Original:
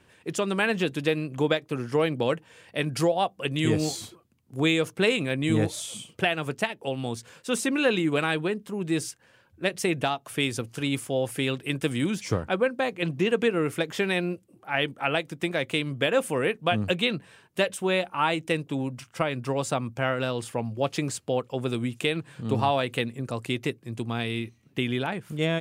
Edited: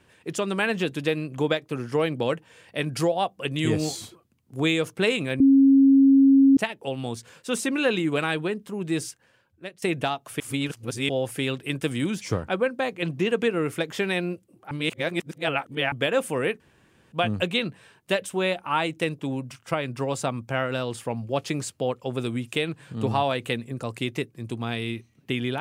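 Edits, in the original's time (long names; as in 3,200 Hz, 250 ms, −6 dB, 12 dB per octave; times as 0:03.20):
0:05.40–0:06.57: beep over 272 Hz −12 dBFS
0:09.03–0:09.82: fade out, to −20 dB
0:10.40–0:11.09: reverse
0:14.71–0:15.92: reverse
0:16.60: splice in room tone 0.52 s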